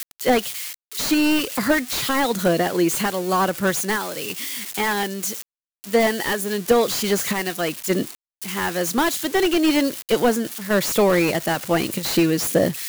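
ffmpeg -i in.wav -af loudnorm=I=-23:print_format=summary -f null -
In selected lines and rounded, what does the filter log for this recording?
Input Integrated:    -21.0 LUFS
Input True Peak:      -4.3 dBTP
Input LRA:             2.6 LU
Input Threshold:     -31.1 LUFS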